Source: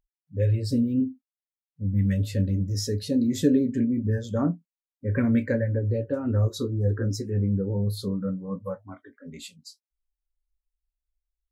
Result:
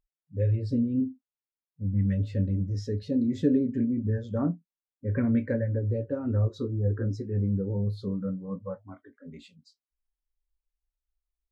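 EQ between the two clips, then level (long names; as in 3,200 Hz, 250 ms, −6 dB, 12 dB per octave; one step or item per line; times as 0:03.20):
head-to-tape spacing loss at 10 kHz 25 dB
−2.0 dB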